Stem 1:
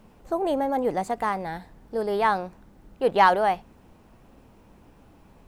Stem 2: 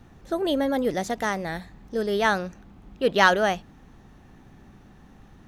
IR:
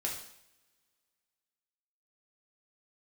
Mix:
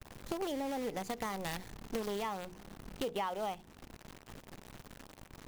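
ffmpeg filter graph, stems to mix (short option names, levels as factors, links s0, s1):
-filter_complex "[0:a]bandreject=f=60:t=h:w=6,bandreject=f=120:t=h:w=6,bandreject=f=180:t=h:w=6,bandreject=f=240:t=h:w=6,bandreject=f=300:t=h:w=6,bandreject=f=360:t=h:w=6,bandreject=f=420:t=h:w=6,bandreject=f=480:t=h:w=6,agate=range=0.0224:threshold=0.00355:ratio=3:detection=peak,volume=0.398,asplit=2[s0][s1];[1:a]adynamicequalizer=threshold=0.01:dfrequency=350:dqfactor=2:tfrequency=350:tqfactor=2:attack=5:release=100:ratio=0.375:range=3.5:mode=cutabove:tftype=bell,acrusher=bits=5:dc=4:mix=0:aa=0.000001,volume=0.944[s2];[s1]apad=whole_len=241567[s3];[s2][s3]sidechaincompress=threshold=0.0112:ratio=5:attack=6.5:release=359[s4];[s0][s4]amix=inputs=2:normalize=0,acompressor=threshold=0.02:ratio=5"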